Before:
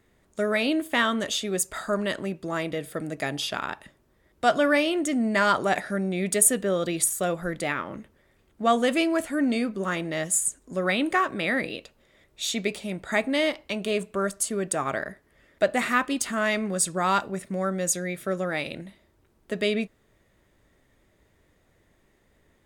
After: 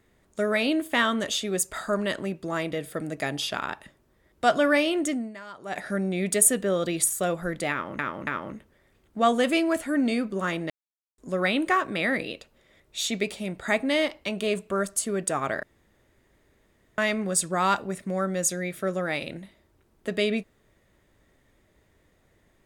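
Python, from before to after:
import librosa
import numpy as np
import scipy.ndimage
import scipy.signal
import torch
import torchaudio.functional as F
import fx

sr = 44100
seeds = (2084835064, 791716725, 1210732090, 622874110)

y = fx.edit(x, sr, fx.fade_down_up(start_s=5.09, length_s=0.78, db=-21.0, fade_s=0.33, curve='qua'),
    fx.repeat(start_s=7.71, length_s=0.28, count=3),
    fx.silence(start_s=10.14, length_s=0.48),
    fx.room_tone_fill(start_s=15.07, length_s=1.35), tone=tone)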